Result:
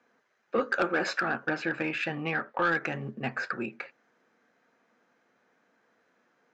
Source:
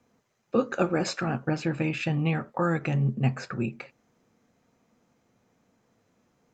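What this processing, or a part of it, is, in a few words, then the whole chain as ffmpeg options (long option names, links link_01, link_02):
intercom: -filter_complex "[0:a]highpass=320,lowpass=4700,equalizer=frequency=1600:width_type=o:width=0.55:gain=10.5,asoftclip=type=tanh:threshold=-17.5dB,asettb=1/sr,asplit=3[link_01][link_02][link_03];[link_01]atrim=end=2.254[link_04];[link_02]atrim=start=2.25:end=2.67,asetpts=PTS-STARTPTS,afade=type=in:duration=0.004:curve=qsin,afade=type=out:start_time=0.416:duration=0.004:curve=qsin,lowpass=5600[link_05];[link_03]atrim=start=2.666[link_06];[link_04][link_05]acrossfade=duration=0.004:curve1=hsin:curve2=qsin[link_07];[link_07][link_06]acrossfade=duration=0.004:curve1=qsin:curve2=hsin"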